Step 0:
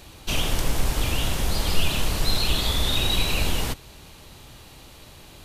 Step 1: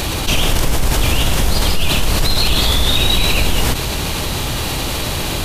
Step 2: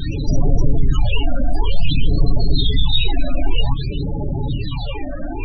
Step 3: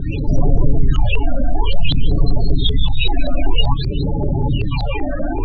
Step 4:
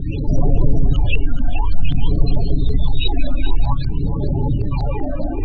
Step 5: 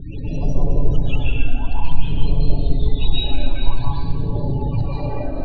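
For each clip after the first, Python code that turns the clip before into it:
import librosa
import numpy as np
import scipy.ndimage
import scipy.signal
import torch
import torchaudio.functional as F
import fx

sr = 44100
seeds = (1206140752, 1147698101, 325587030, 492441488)

y1 = fx.env_flatten(x, sr, amount_pct=70)
y1 = y1 * librosa.db_to_amplitude(1.5)
y2 = y1 + 0.4 * np.pad(y1, (int(7.1 * sr / 1000.0), 0))[:len(y1)]
y2 = fx.phaser_stages(y2, sr, stages=8, low_hz=120.0, high_hz=3500.0, hz=0.53, feedback_pct=25)
y2 = fx.spec_topn(y2, sr, count=16)
y3 = fx.rider(y2, sr, range_db=4, speed_s=2.0)
y3 = fx.filter_lfo_lowpass(y3, sr, shape='saw_up', hz=5.2, low_hz=590.0, high_hz=5000.0, q=1.7)
y3 = y3 * librosa.db_to_amplitude(1.5)
y4 = fx.phaser_stages(y3, sr, stages=4, low_hz=470.0, high_hz=3300.0, hz=0.47, feedback_pct=0)
y4 = y4 + 10.0 ** (-11.0 / 20.0) * np.pad(y4, (int(429 * sr / 1000.0), 0))[:len(y4)]
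y4 = y4 * librosa.db_to_amplitude(-1.0)
y5 = fx.rev_plate(y4, sr, seeds[0], rt60_s=1.3, hf_ratio=0.9, predelay_ms=115, drr_db=-6.5)
y5 = y5 * librosa.db_to_amplitude(-9.0)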